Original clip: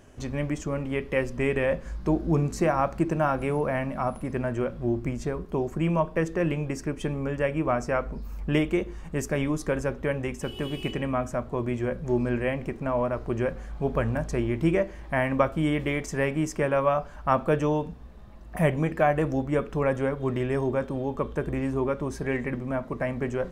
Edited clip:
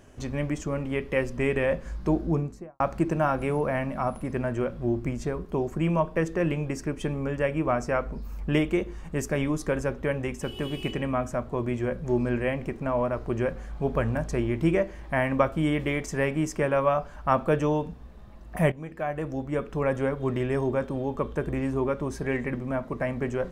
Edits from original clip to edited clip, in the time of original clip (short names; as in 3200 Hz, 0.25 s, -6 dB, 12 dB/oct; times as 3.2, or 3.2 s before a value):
2.14–2.8 studio fade out
18.72–20.04 fade in, from -15.5 dB